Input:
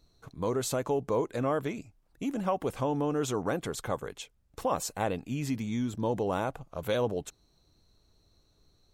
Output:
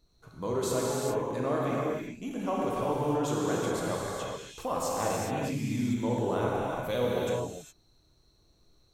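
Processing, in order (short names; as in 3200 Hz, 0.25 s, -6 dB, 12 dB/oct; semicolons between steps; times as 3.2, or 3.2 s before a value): 0.87–1.27 compressor 2:1, threshold -30 dBFS, peak gain reduction 4 dB; non-linear reverb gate 0.44 s flat, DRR -5 dB; gain -4.5 dB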